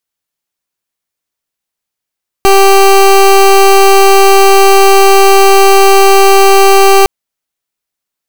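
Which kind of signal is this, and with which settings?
pulse wave 391 Hz, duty 22% −4 dBFS 4.61 s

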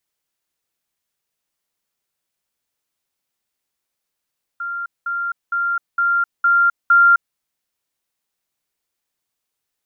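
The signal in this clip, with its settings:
level staircase 1,390 Hz −23 dBFS, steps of 3 dB, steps 6, 0.26 s 0.20 s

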